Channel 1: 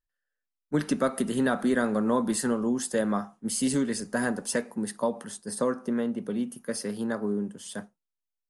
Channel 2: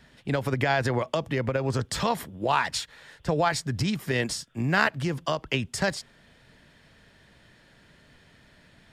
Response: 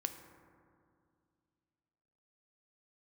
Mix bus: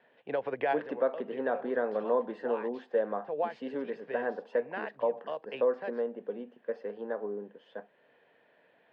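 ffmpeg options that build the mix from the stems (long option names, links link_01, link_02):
-filter_complex "[0:a]lowpass=frequency=3900:poles=1,volume=-3.5dB,asplit=2[link_01][link_02];[1:a]volume=-4dB[link_03];[link_02]apad=whole_len=393610[link_04];[link_03][link_04]sidechaincompress=threshold=-44dB:ratio=3:attack=25:release=309[link_05];[link_01][link_05]amix=inputs=2:normalize=0,highpass=460,equalizer=frequency=480:width_type=q:width=4:gain=9,equalizer=frequency=720:width_type=q:width=4:gain=3,equalizer=frequency=1300:width_type=q:width=4:gain=-8,equalizer=frequency=2100:width_type=q:width=4:gain=-6,lowpass=frequency=2500:width=0.5412,lowpass=frequency=2500:width=1.3066"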